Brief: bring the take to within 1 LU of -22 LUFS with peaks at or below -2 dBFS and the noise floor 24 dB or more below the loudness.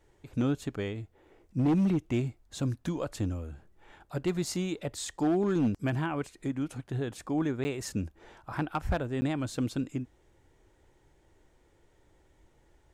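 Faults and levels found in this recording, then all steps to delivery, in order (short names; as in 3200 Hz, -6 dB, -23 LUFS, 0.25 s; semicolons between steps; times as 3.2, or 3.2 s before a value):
clipped 1.0%; flat tops at -21.5 dBFS; dropouts 2; longest dropout 10 ms; loudness -32.0 LUFS; peak -21.5 dBFS; loudness target -22.0 LUFS
-> clip repair -21.5 dBFS; interpolate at 7.64/9.21, 10 ms; gain +10 dB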